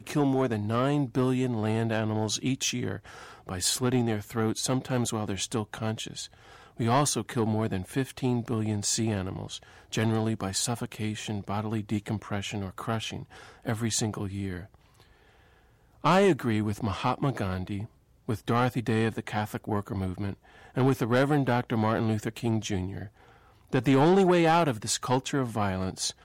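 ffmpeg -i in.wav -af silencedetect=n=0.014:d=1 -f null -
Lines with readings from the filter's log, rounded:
silence_start: 14.63
silence_end: 16.04 | silence_duration: 1.41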